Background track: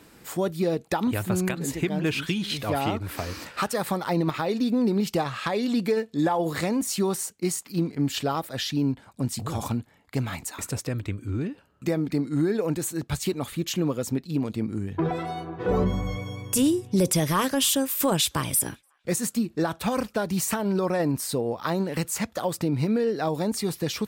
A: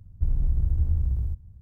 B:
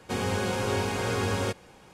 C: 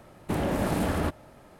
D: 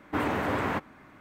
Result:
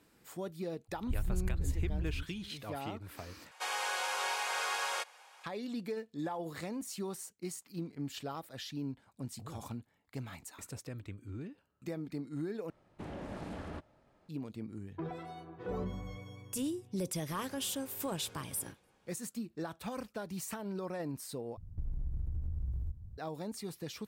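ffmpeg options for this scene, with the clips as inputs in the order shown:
ffmpeg -i bed.wav -i cue0.wav -i cue1.wav -i cue2.wav -filter_complex "[1:a]asplit=2[link_01][link_02];[2:a]asplit=2[link_03][link_04];[0:a]volume=-14.5dB[link_05];[link_03]highpass=frequency=730:width=0.5412,highpass=frequency=730:width=1.3066[link_06];[3:a]lowpass=6400[link_07];[link_04]acompressor=threshold=-34dB:ratio=6:attack=3.2:release=140:knee=1:detection=peak[link_08];[link_02]acompressor=threshold=-32dB:ratio=6:attack=3.2:release=140:knee=1:detection=peak[link_09];[link_05]asplit=4[link_10][link_11][link_12][link_13];[link_10]atrim=end=3.514[link_14];[link_06]atrim=end=1.93,asetpts=PTS-STARTPTS,volume=-1.5dB[link_15];[link_11]atrim=start=5.436:end=12.704[link_16];[link_07]atrim=end=1.59,asetpts=PTS-STARTPTS,volume=-16dB[link_17];[link_12]atrim=start=14.286:end=21.574[link_18];[link_09]atrim=end=1.61,asetpts=PTS-STARTPTS,volume=-1.5dB[link_19];[link_13]atrim=start=23.176[link_20];[link_01]atrim=end=1.61,asetpts=PTS-STARTPTS,volume=-10.5dB,afade=type=in:duration=0.004:curve=hsin,afade=type=out:start_time=1.606:duration=0.004:curve=hsin,adelay=880[link_21];[link_08]atrim=end=1.93,asetpts=PTS-STARTPTS,volume=-17.5dB,afade=type=in:duration=0.004:curve=hsin,afade=type=out:start_time=1.926:duration=0.004:curve=hsin,adelay=17200[link_22];[link_14][link_15]acrossfade=duration=0.004:curve1=hsin:curve2=hsin[link_23];[link_23][link_16]acrossfade=duration=0.004:curve1=hsin:curve2=hsin[link_24];[link_24][link_17]acrossfade=duration=0.004:curve1=hsin:curve2=hsin[link_25];[link_25][link_18]acrossfade=duration=0.004:curve1=hsin:curve2=hsin[link_26];[link_26][link_19]acrossfade=duration=0.004:curve1=hsin:curve2=hsin[link_27];[link_27][link_20]acrossfade=duration=0.004:curve1=hsin:curve2=hsin[link_28];[link_28][link_21][link_22]amix=inputs=3:normalize=0" out.wav

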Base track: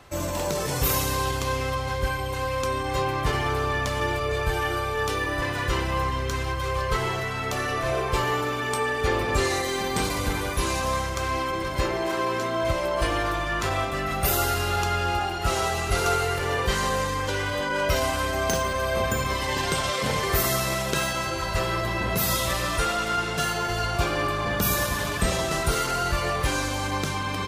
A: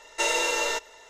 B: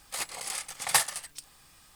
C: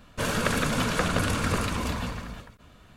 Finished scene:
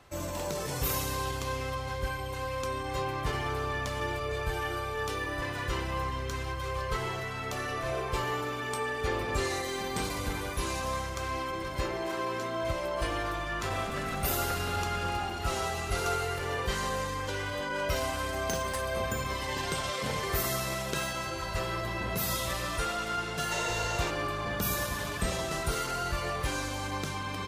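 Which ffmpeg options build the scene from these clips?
ffmpeg -i bed.wav -i cue0.wav -i cue1.wav -i cue2.wav -filter_complex "[0:a]volume=-7dB[link_01];[3:a]atrim=end=2.96,asetpts=PTS-STARTPTS,volume=-15.5dB,afade=type=in:duration=0.004:curve=hsin,afade=type=out:start_time=2.956:duration=0.004:curve=hsin,adelay=13510[link_02];[2:a]atrim=end=1.95,asetpts=PTS-STARTPTS,volume=-18dB,afade=type=in:duration=0.004:curve=hsin,afade=type=out:start_time=1.946:duration=0.004:curve=hsin,adelay=17790[link_03];[1:a]atrim=end=1.09,asetpts=PTS-STARTPTS,volume=-9.5dB,afade=type=in:duration=0.004:curve=hsin,afade=type=out:start_time=1.086:duration=0.004:curve=hsin,adelay=23320[link_04];[link_01][link_02][link_03][link_04]amix=inputs=4:normalize=0" out.wav

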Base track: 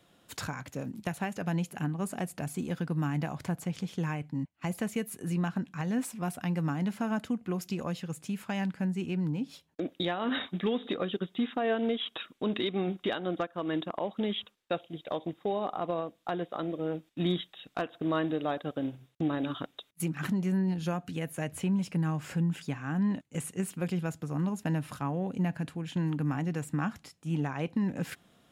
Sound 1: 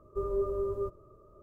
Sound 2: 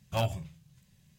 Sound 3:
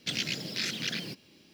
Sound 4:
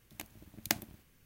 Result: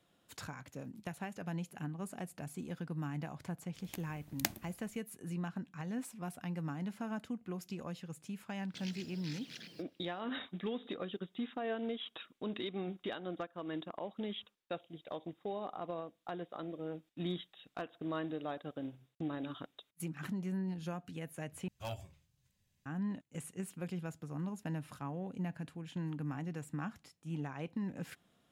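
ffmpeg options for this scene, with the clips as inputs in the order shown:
ffmpeg -i bed.wav -i cue0.wav -i cue1.wav -i cue2.wav -i cue3.wav -filter_complex "[0:a]volume=-9dB[link_01];[2:a]equalizer=frequency=160:width=3.2:gain=-12.5[link_02];[link_01]asplit=2[link_03][link_04];[link_03]atrim=end=21.684[link_05];[link_02]atrim=end=1.18,asetpts=PTS-STARTPTS,volume=-12dB[link_06];[link_04]atrim=start=22.856[link_07];[4:a]atrim=end=1.25,asetpts=PTS-STARTPTS,volume=-3dB,afade=type=in:duration=0.004:curve=hsin,afade=type=out:start_time=1.246:duration=0.004:curve=hsin,adelay=3740[link_08];[3:a]atrim=end=1.53,asetpts=PTS-STARTPTS,volume=-17dB,afade=type=in:duration=0.004:curve=hsin,afade=type=out:start_time=1.526:duration=0.004:curve=hsin,adelay=8680[link_09];[link_05][link_06]acrossfade=duration=0.004:curve1=hsin:curve2=hsin[link_10];[link_10][link_07]acrossfade=duration=0.004:curve1=hsin:curve2=hsin[link_11];[link_11][link_08][link_09]amix=inputs=3:normalize=0" out.wav

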